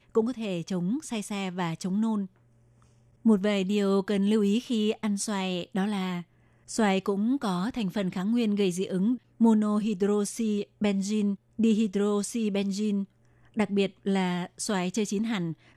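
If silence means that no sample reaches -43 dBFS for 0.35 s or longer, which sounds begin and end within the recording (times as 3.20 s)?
3.25–6.23 s
6.69–13.05 s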